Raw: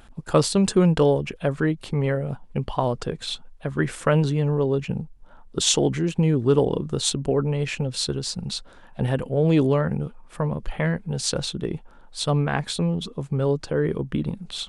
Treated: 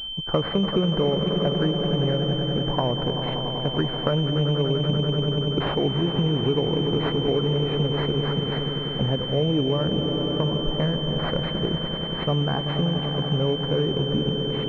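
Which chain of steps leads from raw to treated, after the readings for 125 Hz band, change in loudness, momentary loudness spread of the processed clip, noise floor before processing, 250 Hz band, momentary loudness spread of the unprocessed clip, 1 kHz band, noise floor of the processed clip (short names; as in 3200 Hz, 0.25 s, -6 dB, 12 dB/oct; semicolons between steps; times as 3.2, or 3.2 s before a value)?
+0.5 dB, 0.0 dB, 3 LU, -48 dBFS, 0.0 dB, 11 LU, 0.0 dB, -29 dBFS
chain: swelling echo 96 ms, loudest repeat 5, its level -13 dB; compressor, threshold -20 dBFS, peak gain reduction 8 dB; pulse-width modulation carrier 3100 Hz; gain +1.5 dB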